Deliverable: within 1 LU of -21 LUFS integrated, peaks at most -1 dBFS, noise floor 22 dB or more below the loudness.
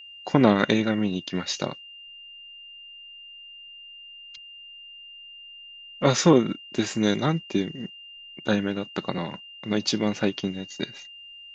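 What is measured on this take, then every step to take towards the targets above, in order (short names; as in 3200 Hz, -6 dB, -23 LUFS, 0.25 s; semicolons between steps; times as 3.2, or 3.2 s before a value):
steady tone 2800 Hz; tone level -42 dBFS; loudness -25.0 LUFS; peak -3.0 dBFS; loudness target -21.0 LUFS
-> notch 2800 Hz, Q 30; gain +4 dB; limiter -1 dBFS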